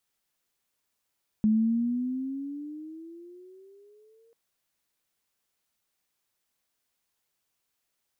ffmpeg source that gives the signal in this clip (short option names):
-f lavfi -i "aevalsrc='pow(10,(-18.5-40*t/2.89)/20)*sin(2*PI*213*2.89/(13.5*log(2)/12)*(exp(13.5*log(2)/12*t/2.89)-1))':d=2.89:s=44100"